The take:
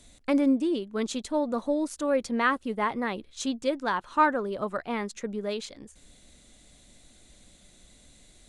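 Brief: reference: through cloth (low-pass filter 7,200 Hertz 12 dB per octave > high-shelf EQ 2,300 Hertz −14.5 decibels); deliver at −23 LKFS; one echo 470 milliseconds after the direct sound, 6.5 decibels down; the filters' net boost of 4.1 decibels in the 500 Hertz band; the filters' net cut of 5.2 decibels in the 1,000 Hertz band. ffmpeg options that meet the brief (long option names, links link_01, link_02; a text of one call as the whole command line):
ffmpeg -i in.wav -af "lowpass=7200,equalizer=frequency=500:width_type=o:gain=7,equalizer=frequency=1000:width_type=o:gain=-5,highshelf=frequency=2300:gain=-14.5,aecho=1:1:470:0.473,volume=3.5dB" out.wav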